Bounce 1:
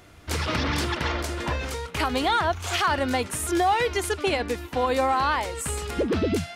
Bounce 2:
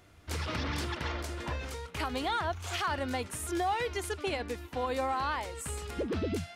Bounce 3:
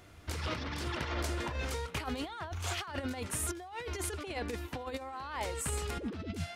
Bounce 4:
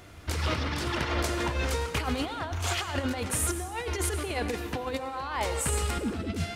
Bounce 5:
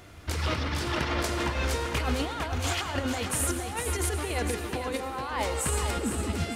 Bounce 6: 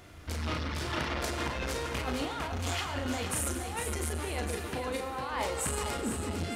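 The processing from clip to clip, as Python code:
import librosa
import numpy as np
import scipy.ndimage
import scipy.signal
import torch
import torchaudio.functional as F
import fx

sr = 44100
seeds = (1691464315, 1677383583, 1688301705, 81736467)

y1 = fx.peak_eq(x, sr, hz=85.0, db=3.0, octaves=0.77)
y1 = y1 * librosa.db_to_amplitude(-9.0)
y2 = fx.over_compress(y1, sr, threshold_db=-36.0, ratio=-0.5)
y3 = fx.rev_plate(y2, sr, seeds[0], rt60_s=1.2, hf_ratio=0.8, predelay_ms=80, drr_db=9.5)
y3 = y3 * librosa.db_to_amplitude(6.5)
y4 = fx.echo_feedback(y3, sr, ms=454, feedback_pct=37, wet_db=-7)
y5 = fx.doubler(y4, sr, ms=36.0, db=-6.5)
y5 = fx.transformer_sat(y5, sr, knee_hz=380.0)
y5 = y5 * librosa.db_to_amplitude(-3.0)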